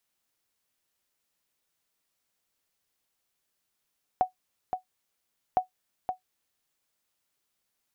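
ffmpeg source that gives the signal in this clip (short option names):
-f lavfi -i "aevalsrc='0.2*(sin(2*PI*741*mod(t,1.36))*exp(-6.91*mod(t,1.36)/0.12)+0.447*sin(2*PI*741*max(mod(t,1.36)-0.52,0))*exp(-6.91*max(mod(t,1.36)-0.52,0)/0.12))':d=2.72:s=44100"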